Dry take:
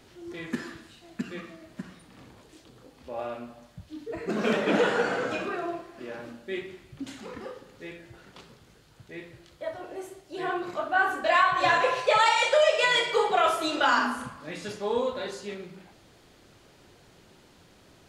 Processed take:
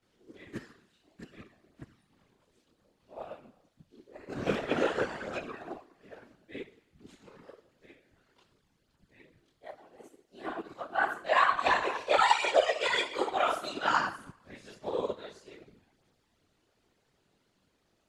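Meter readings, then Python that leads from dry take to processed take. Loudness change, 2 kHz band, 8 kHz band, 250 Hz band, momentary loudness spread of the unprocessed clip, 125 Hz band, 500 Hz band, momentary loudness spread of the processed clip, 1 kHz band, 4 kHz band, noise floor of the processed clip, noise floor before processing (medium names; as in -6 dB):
-3.5 dB, -5.5 dB, -6.5 dB, -7.5 dB, 22 LU, -5.5 dB, -6.0 dB, 21 LU, -4.0 dB, -6.0 dB, -74 dBFS, -57 dBFS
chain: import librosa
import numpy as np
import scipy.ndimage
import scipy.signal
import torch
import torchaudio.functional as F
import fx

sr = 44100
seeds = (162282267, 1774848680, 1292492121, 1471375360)

y = fx.chorus_voices(x, sr, voices=2, hz=1.4, base_ms=24, depth_ms=3.2, mix_pct=70)
y = fx.whisperise(y, sr, seeds[0])
y = fx.upward_expand(y, sr, threshold_db=-47.0, expansion=1.5)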